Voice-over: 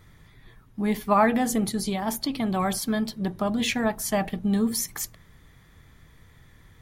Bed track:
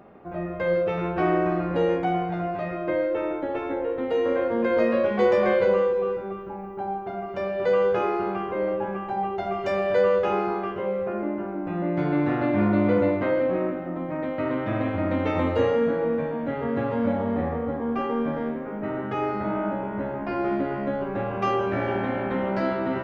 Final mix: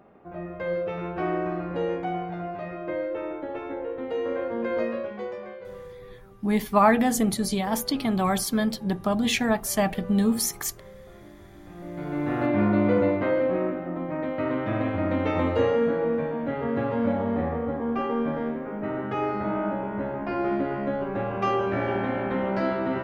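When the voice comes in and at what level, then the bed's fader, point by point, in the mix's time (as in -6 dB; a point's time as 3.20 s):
5.65 s, +1.5 dB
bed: 4.80 s -5 dB
5.58 s -20.5 dB
11.49 s -20.5 dB
12.42 s -0.5 dB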